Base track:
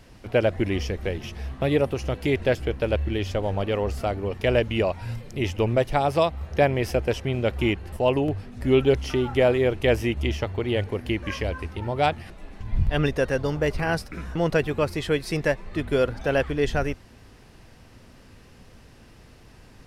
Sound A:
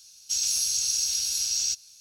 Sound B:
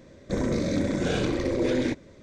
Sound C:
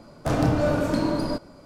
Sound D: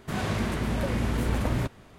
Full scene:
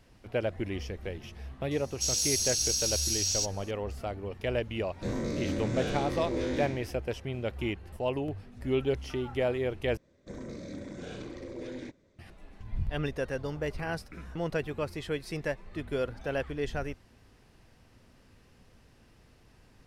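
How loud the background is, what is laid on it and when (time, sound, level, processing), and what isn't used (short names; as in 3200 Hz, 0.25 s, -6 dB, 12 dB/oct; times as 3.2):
base track -9.5 dB
1.71 add A -3 dB
4.72 add B -9 dB + spectral trails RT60 0.81 s
9.97 replace with B -15.5 dB
not used: C, D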